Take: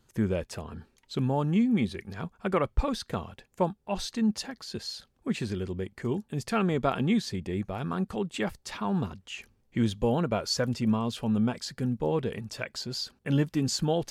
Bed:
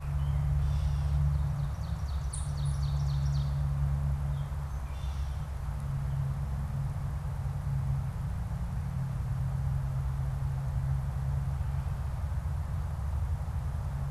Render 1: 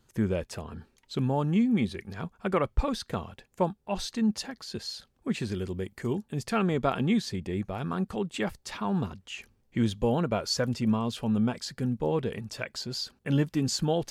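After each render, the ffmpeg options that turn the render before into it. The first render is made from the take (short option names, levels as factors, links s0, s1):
-filter_complex "[0:a]asettb=1/sr,asplit=3[s0][s1][s2];[s0]atrim=end=5.524[s3];[s1]atrim=start=5.52:end=6.13,asetpts=PTS-STARTPTS,afade=t=in:d=0.004:c=qsin,afade=t=out:st=0.606:d=0.004:c=qsin,highshelf=f=7600:g=9.5[s4];[s2]atrim=start=6.126[s5];[s3][s4]acrossfade=d=0.004:c1=hsin:c2=qsin[s6];[s6][s5]acrossfade=d=0.004:c1=qsin:c2=hsin"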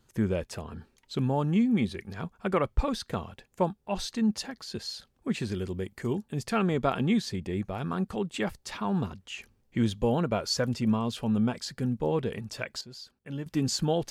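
-filter_complex "[0:a]asplit=3[s0][s1][s2];[s0]atrim=end=12.812[s3];[s1]atrim=start=12.808:end=13.462,asetpts=PTS-STARTPTS,volume=0.282[s4];[s2]atrim=start=13.458[s5];[s3][s4]acrossfade=d=0.004:c1=hsin:c2=hsin[s6];[s6][s5]acrossfade=d=0.004:c1=hsin:c2=hsin"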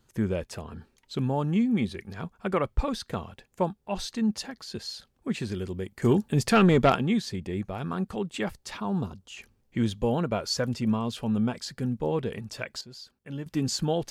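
-filter_complex "[0:a]asettb=1/sr,asplit=3[s0][s1][s2];[s0]atrim=end=6.024[s3];[s1]atrim=start=6.02:end=6.96,asetpts=PTS-STARTPTS,afade=t=in:d=0.004:c=qsin,afade=t=out:st=0.936:d=0.004:c=qsin,aeval=exprs='0.237*sin(PI/2*1.78*val(0)/0.237)':c=same[s4];[s2]atrim=start=6.956[s5];[s3][s4]acrossfade=d=0.004:c1=hsin:c2=qsin[s6];[s6][s5]acrossfade=d=0.004:c1=qsin:c2=hsin,asettb=1/sr,asplit=3[s7][s8][s9];[s7]atrim=end=8.804[s10];[s8]atrim=start=8.8:end=9.37,asetpts=PTS-STARTPTS,afade=t=in:d=0.004:c=qsin,afade=t=out:st=0.566:d=0.004:c=qsin,equalizer=f=2000:w=1.6:g=-11.5[s11];[s9]atrim=start=9.366[s12];[s10][s11]acrossfade=d=0.004:c1=hsin:c2=qsin[s13];[s13][s12]acrossfade=d=0.004:c1=qsin:c2=hsin"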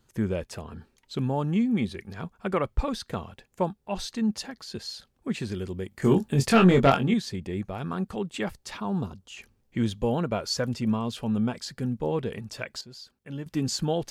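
-filter_complex "[0:a]asettb=1/sr,asplit=3[s0][s1][s2];[s0]atrim=end=5.894[s3];[s1]atrim=start=5.89:end=7.14,asetpts=PTS-STARTPTS,afade=t=in:d=0.004:c=qsin,afade=t=out:st=1.246:d=0.004:c=qsin,asplit=2[s4][s5];[s5]adelay=22,volume=0.562[s6];[s4][s6]amix=inputs=2:normalize=0,atrim=end_sample=55125[s7];[s2]atrim=start=7.136[s8];[s3][s7]acrossfade=d=0.004:c1=hsin:c2=qsin[s9];[s9][s8]acrossfade=d=0.004:c1=qsin:c2=hsin"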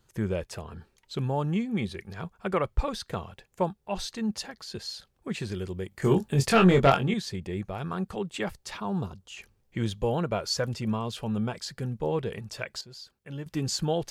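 -af "equalizer=f=250:w=4:g=-9"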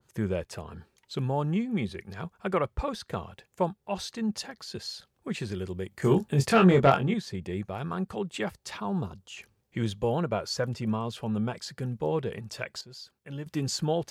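-af "highpass=71,adynamicequalizer=threshold=0.00631:dfrequency=2200:dqfactor=0.7:tfrequency=2200:tqfactor=0.7:attack=5:release=100:ratio=0.375:range=3:mode=cutabove:tftype=highshelf"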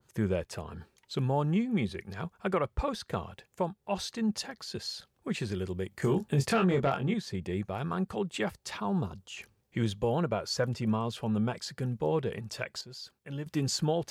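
-af "alimiter=limit=0.119:level=0:latency=1:release=223,areverse,acompressor=mode=upward:threshold=0.00794:ratio=2.5,areverse"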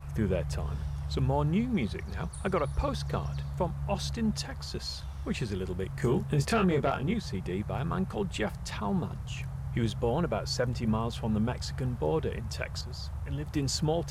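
-filter_complex "[1:a]volume=0.531[s0];[0:a][s0]amix=inputs=2:normalize=0"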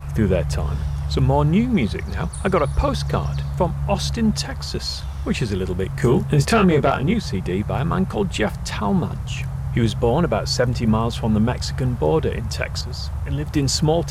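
-af "volume=3.35"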